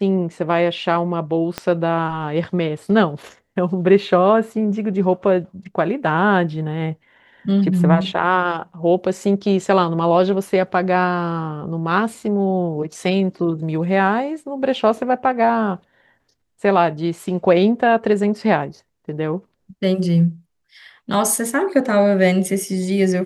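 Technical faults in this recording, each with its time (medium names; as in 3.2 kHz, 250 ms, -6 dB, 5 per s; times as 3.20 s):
1.58 s: pop -9 dBFS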